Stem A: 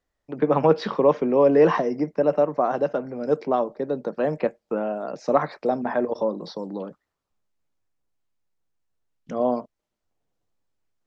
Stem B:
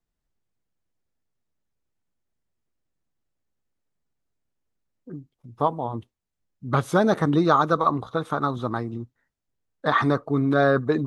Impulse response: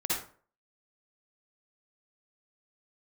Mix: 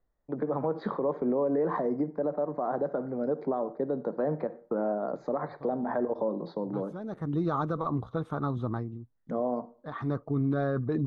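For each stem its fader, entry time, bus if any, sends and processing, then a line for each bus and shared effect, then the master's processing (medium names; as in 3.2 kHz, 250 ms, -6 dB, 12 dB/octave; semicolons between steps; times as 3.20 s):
-1.0 dB, 0.00 s, send -23.5 dB, compression, threshold -21 dBFS, peak gain reduction 9.5 dB; boxcar filter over 16 samples
-9.0 dB, 0.00 s, no send, tilt EQ -3 dB/octave; auto duck -17 dB, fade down 0.55 s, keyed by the first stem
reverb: on, RT60 0.45 s, pre-delay 48 ms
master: peak limiter -20 dBFS, peak gain reduction 7 dB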